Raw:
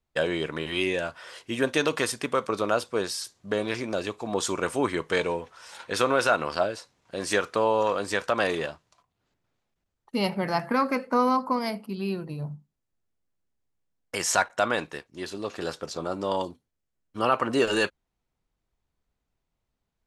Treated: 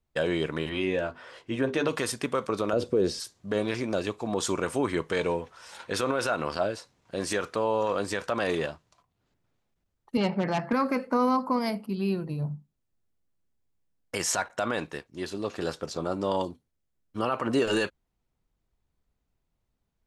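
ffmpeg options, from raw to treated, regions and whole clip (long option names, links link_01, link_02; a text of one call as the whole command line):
ffmpeg -i in.wav -filter_complex "[0:a]asettb=1/sr,asplit=3[link_01][link_02][link_03];[link_01]atrim=end=0.694[link_04];[link_02]atrim=start=0.69:end=1.89,asetpts=PTS-STARTPTS,afade=type=in:duration=0.004:curve=qsin,afade=type=out:start_time=1.196:duration=0.004:curve=qsin,lowpass=frequency=2200:poles=1,bandreject=frequency=50:width_type=h:width=6,bandreject=frequency=100:width_type=h:width=6,bandreject=frequency=150:width_type=h:width=6,bandreject=frequency=200:width_type=h:width=6,bandreject=frequency=250:width_type=h:width=6,bandreject=frequency=300:width_type=h:width=6,bandreject=frequency=350:width_type=h:width=6,bandreject=frequency=400:width_type=h:width=6,bandreject=frequency=450:width_type=h:width=6,asplit=2[link_05][link_06];[link_06]adelay=15,volume=-12dB[link_07];[link_05][link_07]amix=inputs=2:normalize=0,atrim=end_sample=52920[link_08];[link_03]atrim=start=1.886[link_09];[link_04][link_08]acrossfade=duration=0.004:curve1=hsin:curve2=qsin[link_10];[link_10][link_09]acrossfade=duration=0.004:curve1=qsin:curve2=hsin,asettb=1/sr,asplit=3[link_11][link_12][link_13];[link_11]atrim=end=2.734[link_14];[link_12]atrim=start=2.73:end=3.2,asetpts=PTS-STARTPTS,afade=type=in:duration=0.004:curve=qsin,afade=type=out:start_time=0.466:duration=0.004:curve=qsin,acrossover=split=6900[link_15][link_16];[link_16]acompressor=threshold=-53dB:ratio=4:attack=1:release=60[link_17];[link_15][link_17]amix=inputs=2:normalize=0,lowshelf=frequency=660:width_type=q:width=1.5:gain=11.5[link_18];[link_13]atrim=start=3.196[link_19];[link_14][link_18]acrossfade=duration=0.004:curve1=hsin:curve2=qsin[link_20];[link_20][link_19]acrossfade=duration=0.004:curve1=qsin:curve2=hsin,asettb=1/sr,asplit=3[link_21][link_22][link_23];[link_21]atrim=end=10.174[link_24];[link_22]atrim=start=10.17:end=10.73,asetpts=PTS-STARTPTS,afade=type=in:duration=0.004:curve=qsin,afade=type=out:start_time=0.556:duration=0.004:curve=qsin,aemphasis=mode=reproduction:type=50fm,aeval=exprs='0.106*(abs(mod(val(0)/0.106+3,4)-2)-1)':channel_layout=same,highpass=130,lowpass=7400[link_25];[link_23]atrim=start=10.726[link_26];[link_24][link_25]acrossfade=duration=0.004:curve1=hsin:curve2=qsin[link_27];[link_27][link_26]acrossfade=duration=0.004:curve1=qsin:curve2=hsin,lowshelf=frequency=410:gain=5,alimiter=limit=-14.5dB:level=0:latency=1:release=40,volume=-1.5dB" out.wav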